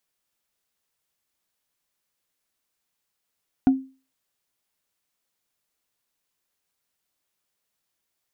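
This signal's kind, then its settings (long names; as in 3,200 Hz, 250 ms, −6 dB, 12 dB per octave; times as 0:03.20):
struck wood, lowest mode 265 Hz, decay 0.34 s, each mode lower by 12 dB, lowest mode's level −10 dB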